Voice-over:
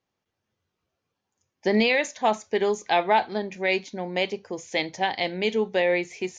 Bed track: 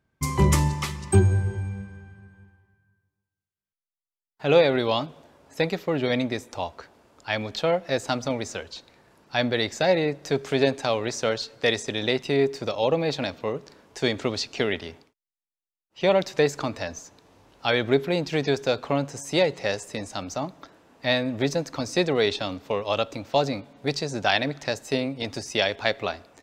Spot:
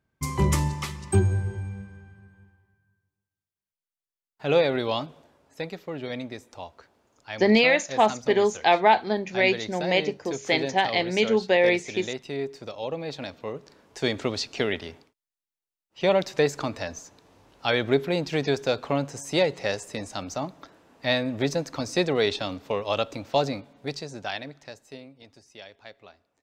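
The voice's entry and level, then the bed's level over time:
5.75 s, +2.5 dB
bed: 5.13 s -3 dB
5.57 s -9 dB
12.93 s -9 dB
14.15 s -1 dB
23.44 s -1 dB
25.36 s -21.5 dB

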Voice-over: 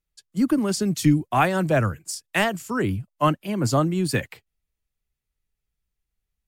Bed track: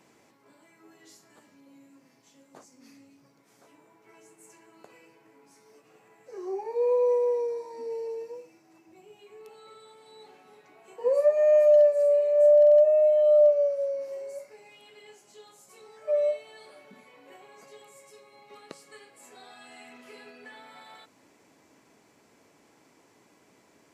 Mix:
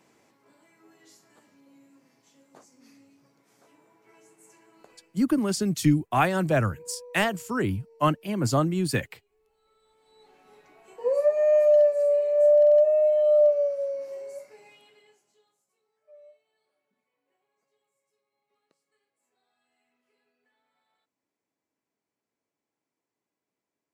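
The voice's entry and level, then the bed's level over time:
4.80 s, -2.5 dB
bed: 4.89 s -2 dB
5.51 s -22.5 dB
9.47 s -22.5 dB
10.54 s -0.5 dB
14.69 s -0.5 dB
15.83 s -27.5 dB

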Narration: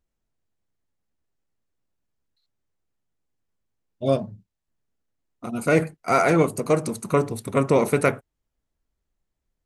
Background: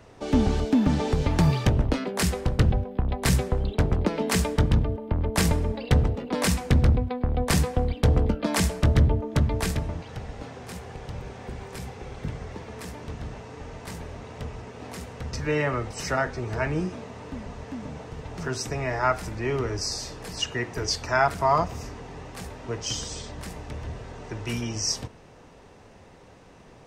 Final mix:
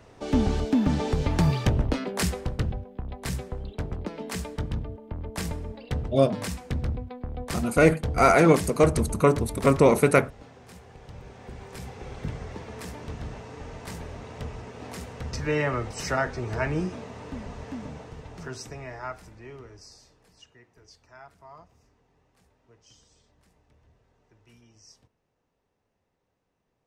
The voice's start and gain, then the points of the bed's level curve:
2.10 s, +1.0 dB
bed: 2.22 s -1.5 dB
2.80 s -9.5 dB
10.91 s -9.5 dB
12.10 s -0.5 dB
17.75 s -0.5 dB
20.65 s -27 dB

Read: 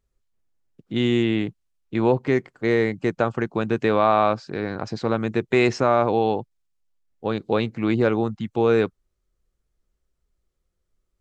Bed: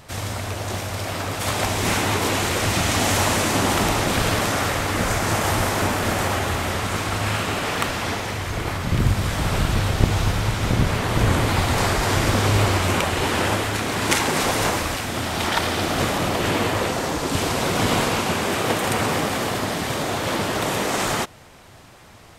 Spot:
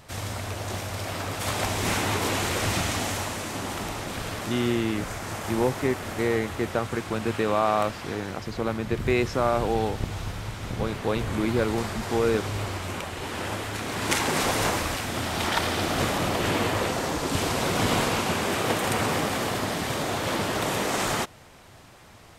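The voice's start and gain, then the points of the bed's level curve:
3.55 s, -5.0 dB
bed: 2.74 s -4.5 dB
3.33 s -12 dB
13.19 s -12 dB
14.33 s -3.5 dB

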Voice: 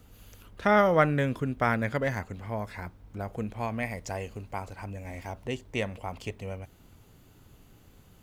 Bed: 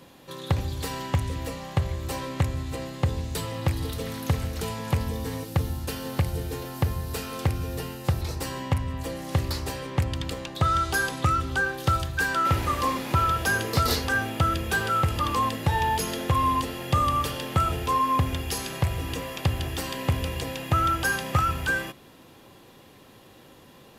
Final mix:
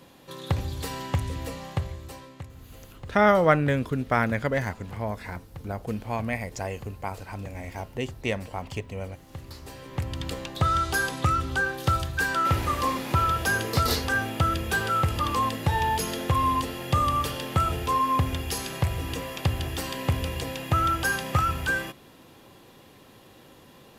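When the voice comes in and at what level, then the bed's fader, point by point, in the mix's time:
2.50 s, +2.5 dB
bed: 1.67 s -1.5 dB
2.49 s -17.5 dB
9.28 s -17.5 dB
10.30 s -0.5 dB

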